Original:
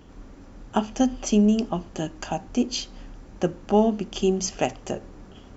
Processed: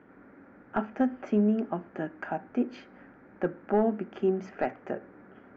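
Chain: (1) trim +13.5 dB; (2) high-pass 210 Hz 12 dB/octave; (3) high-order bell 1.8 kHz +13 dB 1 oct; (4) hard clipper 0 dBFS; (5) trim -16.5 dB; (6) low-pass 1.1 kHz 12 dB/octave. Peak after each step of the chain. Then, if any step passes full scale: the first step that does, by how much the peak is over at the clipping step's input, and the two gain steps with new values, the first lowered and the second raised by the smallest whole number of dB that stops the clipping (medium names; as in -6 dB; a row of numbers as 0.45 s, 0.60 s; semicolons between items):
+6.5 dBFS, +7.0 dBFS, +9.5 dBFS, 0.0 dBFS, -16.5 dBFS, -16.0 dBFS; step 1, 9.5 dB; step 1 +3.5 dB, step 5 -6.5 dB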